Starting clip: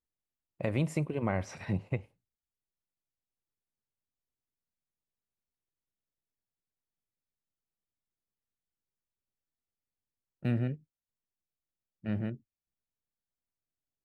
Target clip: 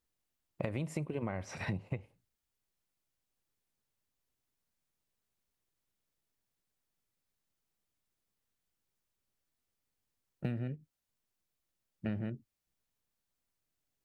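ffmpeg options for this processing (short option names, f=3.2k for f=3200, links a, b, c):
-af "acompressor=threshold=-40dB:ratio=10,volume=7dB"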